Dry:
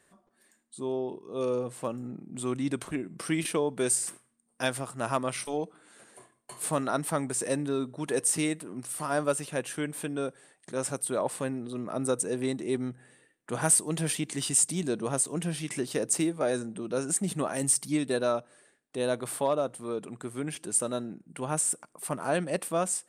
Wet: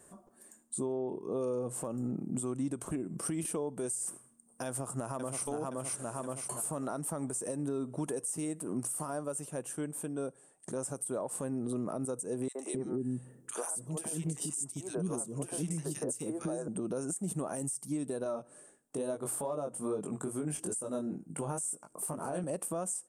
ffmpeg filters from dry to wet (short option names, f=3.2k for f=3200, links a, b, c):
-filter_complex "[0:a]asettb=1/sr,asplit=3[a][b][c];[a]atrim=end=0.864[d];[b]atrim=start=0.86:end=1.43,asetpts=PTS-STARTPTS,afade=t=in:d=0.004:c=qsin,afade=t=out:st=0.566:d=0.004:c=qsin,equalizer=f=11k:t=o:w=2.4:g=-6[e];[c]atrim=start=1.426[f];[d][e]acrossfade=d=0.004:c1=hsin:c2=qsin[g];[g][f]acrossfade=d=0.004:c1=qsin:c2=hsin,asplit=2[h][i];[i]afade=t=in:st=4.67:d=0.01,afade=t=out:st=5.44:d=0.01,aecho=0:1:520|1040|1560|2080|2600:0.562341|0.224937|0.0899746|0.0359898|0.0143959[j];[h][j]amix=inputs=2:normalize=0,asettb=1/sr,asplit=3[k][l][m];[k]atrim=end=12.484[n];[l]atrim=start=12.48:end=16.68,asetpts=PTS-STARTPTS,afade=t=in:d=0.004:c=qsin,afade=t=out:st=4.196:d=0.004:c=qsin,acrossover=split=400|1700[o][p][q];[p]adelay=70[r];[o]adelay=260[s];[s][r][q]amix=inputs=3:normalize=0,atrim=end_sample=185220[t];[m]atrim=start=16.676[u];[n][t]acrossfade=d=0.004:c1=hsin:c2=qsin[v];[v][u]acrossfade=d=0.004:c1=qsin:c2=hsin,asettb=1/sr,asplit=3[w][x][y];[w]atrim=end=18.244[z];[x]atrim=start=18.24:end=22.44,asetpts=PTS-STARTPTS,afade=t=in:d=0.004:c=qsin,afade=t=out:st=4.196:d=0.004:c=qsin,flanger=delay=19:depth=3.1:speed=2.3[aa];[y]atrim=start=22.436[ab];[z][aa]acrossfade=d=0.004:c1=hsin:c2=qsin[ac];[ac][ab]acrossfade=d=0.004:c1=qsin:c2=hsin,asplit=3[ad][ae][af];[ad]atrim=end=9.2,asetpts=PTS-STARTPTS,afade=t=out:st=8.87:d=0.33:silence=0.266073[ag];[ae]atrim=start=9.2:end=10.52,asetpts=PTS-STARTPTS,volume=-11.5dB[ah];[af]atrim=start=10.52,asetpts=PTS-STARTPTS,afade=t=in:d=0.33:silence=0.266073[ai];[ag][ah][ai]concat=n=3:v=0:a=1,equalizer=f=2k:t=o:w=1:g=-10,equalizer=f=4k:t=o:w=1:g=-12,equalizer=f=8k:t=o:w=1:g=5,acompressor=threshold=-38dB:ratio=12,alimiter=level_in=10dB:limit=-24dB:level=0:latency=1:release=74,volume=-10dB,volume=8dB"